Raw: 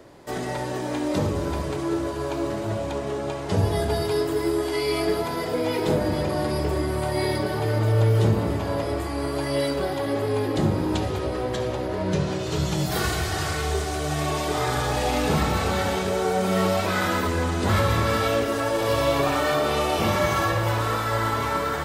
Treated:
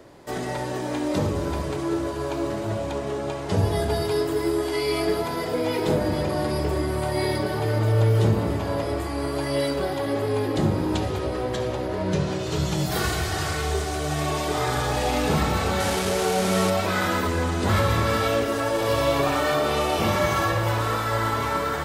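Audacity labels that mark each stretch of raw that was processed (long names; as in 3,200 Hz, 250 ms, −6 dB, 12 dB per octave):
15.800000	16.700000	linear delta modulator 64 kbit/s, step −21 dBFS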